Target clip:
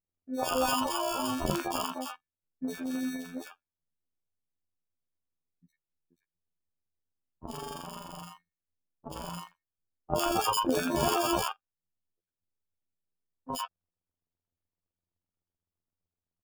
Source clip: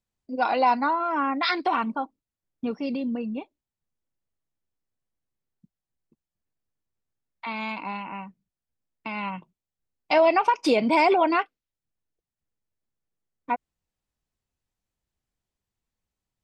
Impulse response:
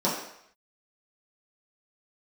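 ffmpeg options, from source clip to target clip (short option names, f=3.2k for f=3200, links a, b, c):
-filter_complex "[0:a]afftfilt=real='hypot(re,im)*cos(PI*b)':imag='0':win_size=2048:overlap=0.75,acrusher=samples=22:mix=1:aa=0.000001,acrossover=split=940|3000[a][b][c];[c]adelay=60[d];[b]adelay=100[e];[a][e][d]amix=inputs=3:normalize=0,volume=-1.5dB"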